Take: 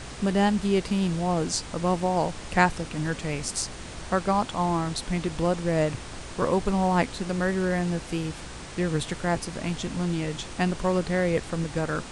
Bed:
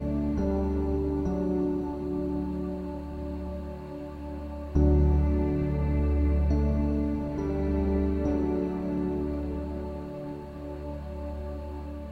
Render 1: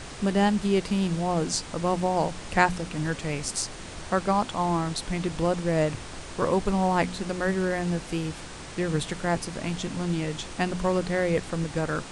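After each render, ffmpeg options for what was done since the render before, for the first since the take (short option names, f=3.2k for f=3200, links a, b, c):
-af "bandreject=f=60:t=h:w=4,bandreject=f=120:t=h:w=4,bandreject=f=180:t=h:w=4,bandreject=f=240:t=h:w=4"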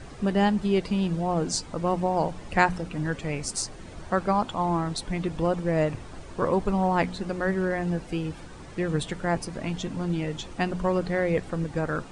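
-af "afftdn=nr=11:nf=-40"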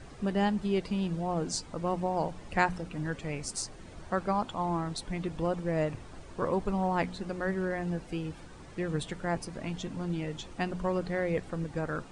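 -af "volume=-5.5dB"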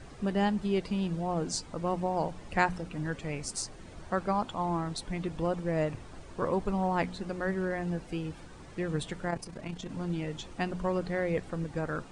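-filter_complex "[0:a]asplit=3[a][b][c];[a]afade=t=out:st=9.28:d=0.02[d];[b]tremolo=f=30:d=0.621,afade=t=in:st=9.28:d=0.02,afade=t=out:st=9.88:d=0.02[e];[c]afade=t=in:st=9.88:d=0.02[f];[d][e][f]amix=inputs=3:normalize=0"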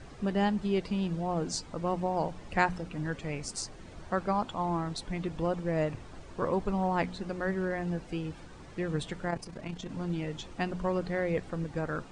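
-af "lowpass=8.4k"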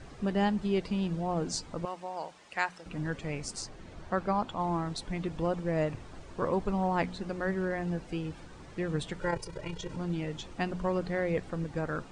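-filter_complex "[0:a]asettb=1/sr,asplit=3[a][b][c];[a]atrim=end=1.854[d];[b]atrim=start=1.85:end=2.86,asetpts=PTS-STARTPTS,afade=t=in:d=0.004:c=qsin,afade=t=out:st=1.006:d=0.004:c=qsin,highpass=f=1.4k:p=1[e];[c]atrim=start=2.856[f];[d][e]acrossfade=d=0.004:c1=hsin:c2=qsin[g];[g][f]acrossfade=d=0.004:c1=qsin:c2=hsin,asettb=1/sr,asplit=3[h][i][j];[h]atrim=end=3.554[k];[i]atrim=start=3.55:end=4.6,asetpts=PTS-STARTPTS,afade=t=in:d=0.004:c=qsin,afade=t=out:st=1.046:d=0.004:c=qsin,highshelf=f=8.2k:g=-8[l];[j]atrim=start=4.596[m];[k][l]acrossfade=d=0.004:c1=hsin:c2=qsin[n];[n][m]acrossfade=d=0.004:c1=qsin:c2=hsin,asettb=1/sr,asplit=3[o][p][q];[o]atrim=end=9.214[r];[p]atrim=start=9.21:end=9.96,asetpts=PTS-STARTPTS,afade=t=in:d=0.004:c=qsin,afade=t=out:st=0.746:d=0.004:c=qsin,aecho=1:1:2.1:0.99,atrim=end_sample=33075[s];[q]atrim=start=9.956[t];[r][s]acrossfade=d=0.004:c1=hsin:c2=qsin[u];[u][t]acrossfade=d=0.004:c1=qsin:c2=hsin"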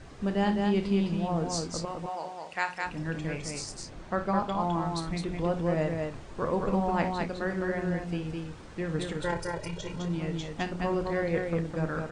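-filter_complex "[0:a]asplit=2[a][b];[b]adelay=30,volume=-11dB[c];[a][c]amix=inputs=2:normalize=0,aecho=1:1:57|209:0.266|0.668"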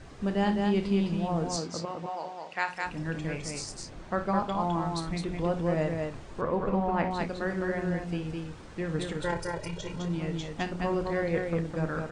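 -filter_complex "[0:a]asettb=1/sr,asplit=3[a][b][c];[a]atrim=end=1.564[d];[b]atrim=start=1.56:end=2.68,asetpts=PTS-STARTPTS,afade=t=in:d=0.004:c=qsin,afade=t=out:st=1.116:d=0.004:c=qsin,highpass=130,lowpass=6.2k[e];[c]atrim=start=2.676[f];[d][e]acrossfade=d=0.004:c1=hsin:c2=qsin[g];[g][f]acrossfade=d=0.004:c1=qsin:c2=hsin,asettb=1/sr,asplit=3[h][i][j];[h]atrim=end=6.414[k];[i]atrim=start=6.41:end=7.11,asetpts=PTS-STARTPTS,afade=t=in:d=0.004:c=qsin,afade=t=out:st=0.696:d=0.004:c=qsin,bass=f=250:g=-1,treble=f=4k:g=-13[l];[j]atrim=start=7.106[m];[k][l]acrossfade=d=0.004:c1=hsin:c2=qsin[n];[n][m]acrossfade=d=0.004:c1=qsin:c2=hsin"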